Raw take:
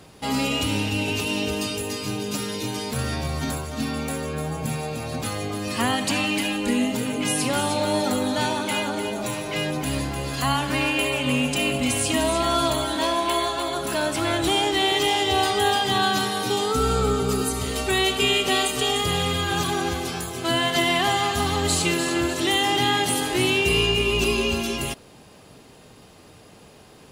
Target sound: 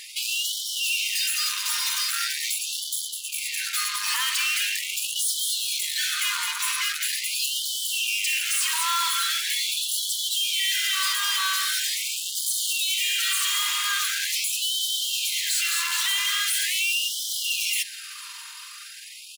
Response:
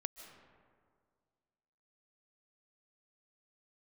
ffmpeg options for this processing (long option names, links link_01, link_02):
-filter_complex "[0:a]highpass=85,equalizer=frequency=560:width_type=o:width=2.1:gain=-11.5,aecho=1:1:5.1:0.35,bandreject=frequency=191.5:width_type=h:width=4,bandreject=frequency=383:width_type=h:width=4,bandreject=frequency=574.5:width_type=h:width=4,bandreject=frequency=766:width_type=h:width=4,bandreject=frequency=957.5:width_type=h:width=4,acrossover=split=170[link_01][link_02];[link_02]dynaudnorm=framelen=170:gausssize=21:maxgain=4dB[link_03];[link_01][link_03]amix=inputs=2:normalize=0,alimiter=limit=-14dB:level=0:latency=1:release=125,aeval=exprs='0.2*sin(PI/2*1.58*val(0)/0.2)':channel_layout=same,atempo=1.4,asoftclip=type=tanh:threshold=-30dB,asplit=2[link_04][link_05];[1:a]atrim=start_sample=2205[link_06];[link_05][link_06]afir=irnorm=-1:irlink=0,volume=-11.5dB[link_07];[link_04][link_07]amix=inputs=2:normalize=0,afftfilt=real='re*gte(b*sr/1024,880*pow(3000/880,0.5+0.5*sin(2*PI*0.42*pts/sr)))':imag='im*gte(b*sr/1024,880*pow(3000/880,0.5+0.5*sin(2*PI*0.42*pts/sr)))':win_size=1024:overlap=0.75,volume=6dB"